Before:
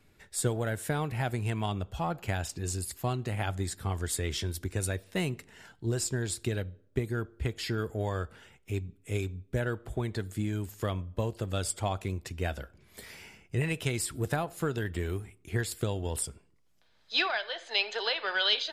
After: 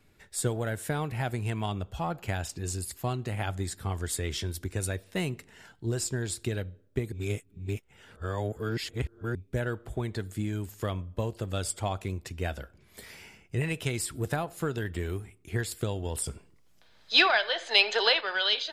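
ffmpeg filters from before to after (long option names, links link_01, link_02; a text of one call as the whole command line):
ffmpeg -i in.wav -filter_complex "[0:a]asettb=1/sr,asplit=3[link_01][link_02][link_03];[link_01]atrim=end=16.264[link_04];[link_02]atrim=start=16.26:end=18.21,asetpts=PTS-STARTPTS,afade=type=in:duration=0.004:curve=qsin,afade=type=out:start_time=1.946:duration=0.004:curve=qsin,acontrast=85[link_05];[link_03]atrim=start=18.206[link_06];[link_04][link_05]acrossfade=duration=0.004:curve1=hsin:curve2=qsin[link_07];[link_07][link_06]acrossfade=duration=0.004:curve1=qsin:curve2=hsin,asplit=3[link_08][link_09][link_10];[link_08]atrim=end=7.122[link_11];[link_09]atrim=start=7.118:end=9.352,asetpts=PTS-STARTPTS,areverse[link_12];[link_10]atrim=start=9.348[link_13];[link_11][link_12]acrossfade=duration=0.004:curve1=hsin:curve2=hsin[link_14];[link_14][link_13]acrossfade=duration=0.004:curve1=hsin:curve2=hsin" out.wav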